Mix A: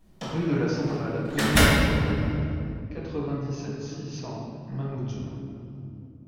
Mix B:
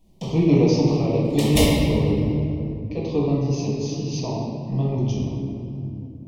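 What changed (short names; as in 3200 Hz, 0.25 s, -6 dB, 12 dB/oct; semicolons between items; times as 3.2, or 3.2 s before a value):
speech +9.0 dB; master: add Butterworth band-stop 1500 Hz, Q 1.1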